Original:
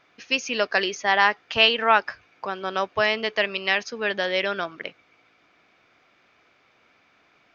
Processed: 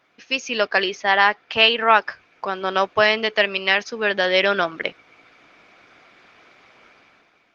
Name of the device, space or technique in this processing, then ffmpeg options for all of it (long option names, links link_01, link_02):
video call: -filter_complex "[0:a]asettb=1/sr,asplit=3[link_01][link_02][link_03];[link_01]atrim=end=0.684[link_04];[link_02]atrim=start=0.68:end=1.89,asetpts=PTS-STARTPTS,afade=type=in:duration=0.004:curve=qsin,afade=type=out:start_time=1.206:duration=0.004:curve=qsin,lowpass=5300[link_05];[link_03]atrim=start=1.886[link_06];[link_04][link_05]acrossfade=duration=0.004:curve1=hsin:curve2=qsin[link_07];[link_07][link_06]acrossfade=duration=0.004:curve1=qsin:curve2=hsin,highpass=frequency=120:poles=1,dynaudnorm=framelen=120:gausssize=9:maxgain=11.5dB" -ar 48000 -c:a libopus -b:a 20k